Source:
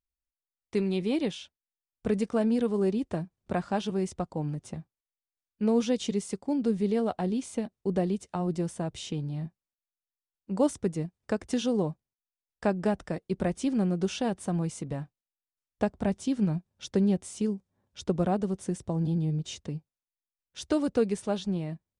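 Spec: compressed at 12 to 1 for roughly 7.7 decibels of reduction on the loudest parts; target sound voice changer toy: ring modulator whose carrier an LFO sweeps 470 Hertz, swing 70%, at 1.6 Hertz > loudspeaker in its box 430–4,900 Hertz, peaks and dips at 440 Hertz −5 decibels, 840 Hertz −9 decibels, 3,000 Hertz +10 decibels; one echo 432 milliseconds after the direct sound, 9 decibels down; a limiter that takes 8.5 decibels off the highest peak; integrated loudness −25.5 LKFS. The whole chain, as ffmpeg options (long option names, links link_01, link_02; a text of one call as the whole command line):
ffmpeg -i in.wav -af "acompressor=threshold=-28dB:ratio=12,alimiter=level_in=2.5dB:limit=-24dB:level=0:latency=1,volume=-2.5dB,aecho=1:1:432:0.355,aeval=exprs='val(0)*sin(2*PI*470*n/s+470*0.7/1.6*sin(2*PI*1.6*n/s))':channel_layout=same,highpass=430,equalizer=frequency=440:width_type=q:width=4:gain=-5,equalizer=frequency=840:width_type=q:width=4:gain=-9,equalizer=frequency=3000:width_type=q:width=4:gain=10,lowpass=frequency=4900:width=0.5412,lowpass=frequency=4900:width=1.3066,volume=18dB" out.wav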